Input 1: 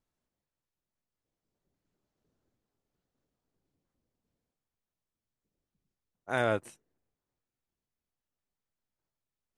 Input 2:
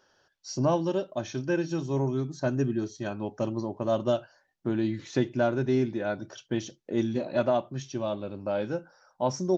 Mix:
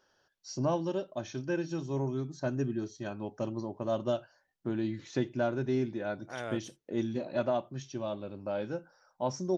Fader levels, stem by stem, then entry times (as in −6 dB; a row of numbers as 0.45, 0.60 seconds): −10.5, −5.0 decibels; 0.00, 0.00 seconds